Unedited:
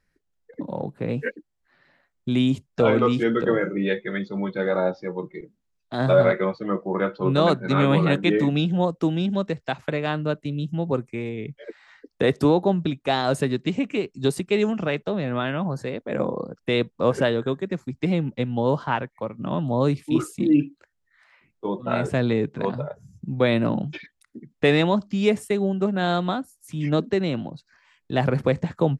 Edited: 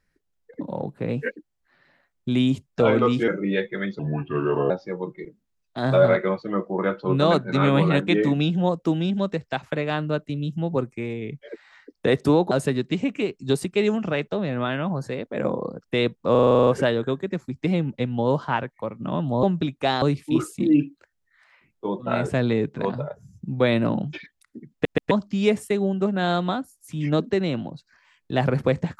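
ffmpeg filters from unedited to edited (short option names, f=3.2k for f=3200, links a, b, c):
-filter_complex "[0:a]asplit=19[a][b][c][d][e][f][g][h][i][j][k][l][m][n][o][p][q][r][s];[a]atrim=end=3.282[t];[b]atrim=start=3.608:end=4.324[u];[c]atrim=start=4.32:end=4.86,asetpts=PTS-STARTPTS,asetrate=33516,aresample=44100,atrim=end_sample=31334,asetpts=PTS-STARTPTS[v];[d]atrim=start=4.856:end=12.672[w];[e]atrim=start=13.258:end=17.102[x];[f]atrim=start=17.058:end=17.102[y];[g]atrim=start=17.058:end=17.102[z];[h]atrim=start=17.058:end=17.102[aa];[i]atrim=start=17.058:end=17.102[ab];[j]atrim=start=17.058:end=17.102[ac];[k]atrim=start=17.058:end=17.102[ad];[l]atrim=start=17.058:end=17.102[ae];[m]atrim=start=17.058:end=17.102[af];[n]atrim=start=17.058:end=19.822[ag];[o]atrim=start=12.668:end=13.262[ah];[p]atrim=start=19.818:end=24.652[ai];[q]atrim=start=24.518:end=24.652[aj];[r]atrim=start=24.518:end=24.652[ak];[s]atrim=start=24.908[al];[t][u]acrossfade=d=0.004:c1=hsin:c2=hsin[am];[am][v]acrossfade=d=0.004:c1=hsin:c2=hsin[an];[an][w]acrossfade=d=0.004:c1=hsin:c2=hsin[ao];[ao][x]acrossfade=d=0.004:c1=hsin:c2=hsin[ap];[ap][y]acrossfade=d=0.004:c1=hsin:c2=hsin[aq];[aq][z]acrossfade=d=0.004:c1=hsin:c2=hsin[ar];[ar][aa]acrossfade=d=0.004:c1=hsin:c2=hsin[as];[as][ab]acrossfade=d=0.004:c1=hsin:c2=hsin[at];[at][ac]acrossfade=d=0.004:c1=hsin:c2=hsin[au];[au][ad]acrossfade=d=0.004:c1=hsin:c2=hsin[av];[av][ae]acrossfade=d=0.004:c1=hsin:c2=hsin[aw];[aw][af]acrossfade=d=0.004:c1=hsin:c2=hsin[ax];[ax][ag]acrossfade=d=0.004:c1=hsin:c2=hsin[ay];[ay][ah]acrossfade=d=0.004:c1=hsin:c2=hsin[az];[az][ai]acrossfade=d=0.004:c1=hsin:c2=hsin[ba];[ba][aj]acrossfade=d=0.004:c1=hsin:c2=hsin[bb];[bb][ak]acrossfade=d=0.004:c1=hsin:c2=hsin[bc];[bc][al]acrossfade=d=0.004:c1=hsin:c2=hsin"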